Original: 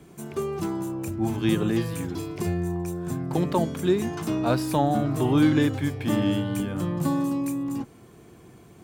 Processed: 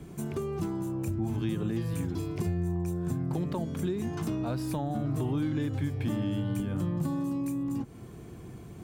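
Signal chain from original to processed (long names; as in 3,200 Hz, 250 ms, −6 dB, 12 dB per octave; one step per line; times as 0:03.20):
in parallel at −2 dB: brickwall limiter −19 dBFS, peak gain reduction 9 dB
on the sum: downward compressor 3 to 1, threshold −30 dBFS, peak gain reduction 12.5 dB
low-shelf EQ 210 Hz +10.5 dB
level −5.5 dB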